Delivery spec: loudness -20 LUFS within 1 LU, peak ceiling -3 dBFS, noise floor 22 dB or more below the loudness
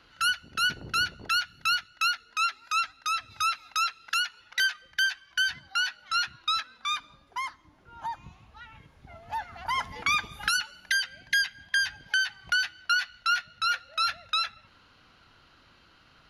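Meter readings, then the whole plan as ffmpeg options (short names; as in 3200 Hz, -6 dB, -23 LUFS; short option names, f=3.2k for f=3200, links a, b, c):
loudness -28.0 LUFS; peak -11.5 dBFS; loudness target -20.0 LUFS
-> -af "volume=8dB"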